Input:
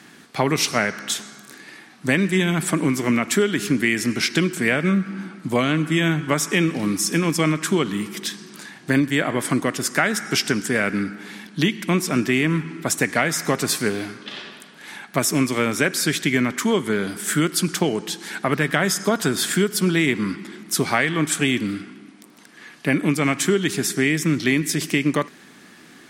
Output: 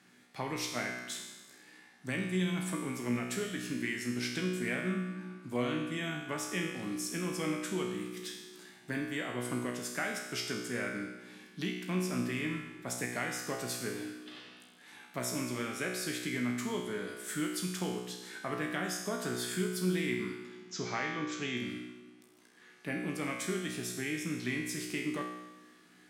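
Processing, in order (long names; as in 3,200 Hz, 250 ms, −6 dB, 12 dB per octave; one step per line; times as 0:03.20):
0:20.45–0:21.57: Butterworth low-pass 7,100 Hz 96 dB per octave
tuned comb filter 61 Hz, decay 1.1 s, harmonics all, mix 90%
level −3 dB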